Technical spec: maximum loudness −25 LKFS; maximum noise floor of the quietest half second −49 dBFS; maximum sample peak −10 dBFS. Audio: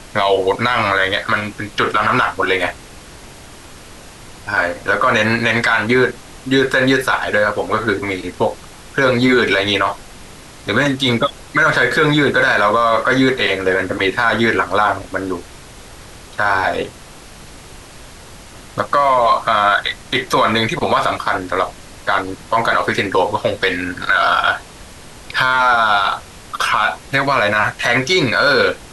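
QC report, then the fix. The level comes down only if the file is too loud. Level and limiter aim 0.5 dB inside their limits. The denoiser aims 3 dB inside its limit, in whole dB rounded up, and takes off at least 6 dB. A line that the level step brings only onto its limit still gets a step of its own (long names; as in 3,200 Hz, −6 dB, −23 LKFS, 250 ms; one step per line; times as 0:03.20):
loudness −16.0 LKFS: out of spec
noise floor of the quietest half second −38 dBFS: out of spec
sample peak −4.0 dBFS: out of spec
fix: broadband denoise 6 dB, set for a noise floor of −38 dBFS
level −9.5 dB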